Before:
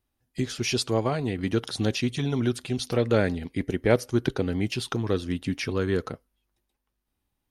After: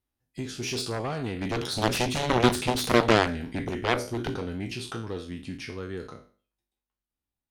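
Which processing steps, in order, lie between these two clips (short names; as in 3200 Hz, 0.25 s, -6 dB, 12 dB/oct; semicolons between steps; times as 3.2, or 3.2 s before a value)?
spectral trails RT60 0.41 s; Doppler pass-by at 2.51, 5 m/s, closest 2.6 m; added harmonics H 7 -10 dB, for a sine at -11.5 dBFS; gain +4.5 dB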